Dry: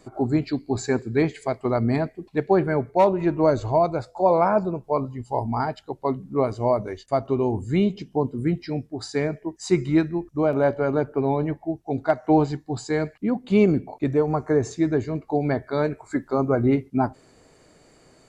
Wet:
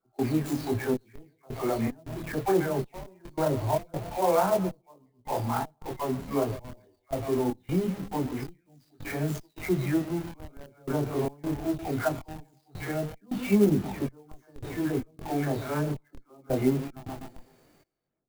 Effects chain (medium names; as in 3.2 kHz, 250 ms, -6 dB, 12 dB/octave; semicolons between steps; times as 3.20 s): delay that grows with frequency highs early, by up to 365 ms; on a send: bucket-brigade echo 127 ms, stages 1024, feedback 43%, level -16.5 dB; on the sum: trance gate ".xxxx...xx" 80 bpm -24 dB; in parallel at -8.5 dB: Schmitt trigger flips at -37.5 dBFS; on the sum: chorus voices 2, 0.22 Hz, delay 24 ms, depth 4.3 ms; sampling jitter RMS 0.03 ms; trim -2.5 dB